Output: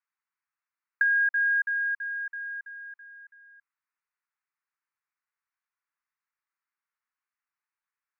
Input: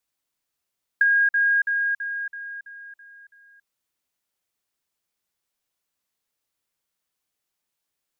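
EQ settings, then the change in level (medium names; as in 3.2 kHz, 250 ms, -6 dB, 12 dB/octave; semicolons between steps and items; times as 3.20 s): dynamic bell 1.7 kHz, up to -4 dB, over -31 dBFS, Q 1.1; Butterworth band-pass 1.6 kHz, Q 0.71; static phaser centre 1.4 kHz, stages 4; 0.0 dB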